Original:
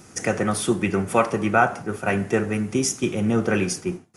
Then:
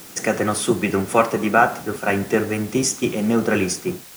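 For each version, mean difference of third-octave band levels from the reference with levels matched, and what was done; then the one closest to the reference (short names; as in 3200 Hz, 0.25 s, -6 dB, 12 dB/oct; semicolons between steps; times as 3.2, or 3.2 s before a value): 4.5 dB: octaver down 1 oct, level -2 dB; HPF 190 Hz 12 dB/oct; in parallel at -5 dB: requantised 6-bit, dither triangular; on the sum: gain -1 dB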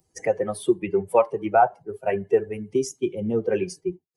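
13.5 dB: per-bin expansion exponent 2; band shelf 580 Hz +13.5 dB; three-band squash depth 40%; gain -6 dB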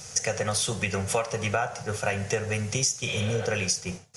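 6.5 dB: spectral repair 3.09–3.43, 490–4400 Hz both; EQ curve 140 Hz 0 dB, 320 Hz -23 dB, 470 Hz +1 dB, 770 Hz -2 dB, 1200 Hz -5 dB, 6000 Hz +10 dB, 10000 Hz 0 dB; compressor 6:1, threshold -27 dBFS, peak gain reduction 13.5 dB; gain +3.5 dB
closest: first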